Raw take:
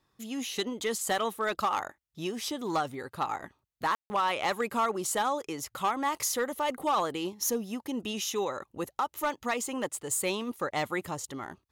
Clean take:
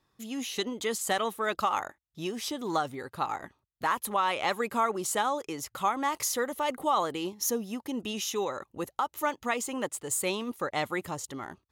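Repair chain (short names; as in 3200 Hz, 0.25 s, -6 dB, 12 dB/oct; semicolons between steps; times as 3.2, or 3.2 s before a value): clip repair -21 dBFS; room tone fill 3.95–4.1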